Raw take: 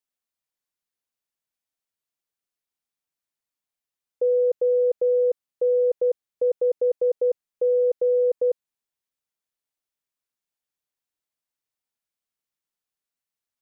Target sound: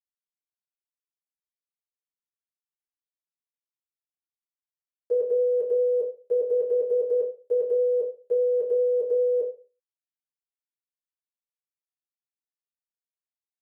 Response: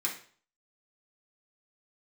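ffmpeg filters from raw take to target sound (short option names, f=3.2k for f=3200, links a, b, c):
-filter_complex "[0:a]areverse,highpass=f=460:p=1,aeval=exprs='val(0)*gte(abs(val(0)),0.00141)':c=same[a];[1:a]atrim=start_sample=2205,asetrate=57330,aresample=44100[b];[a][b]afir=irnorm=-1:irlink=0,aresample=32000,aresample=44100,volume=4dB"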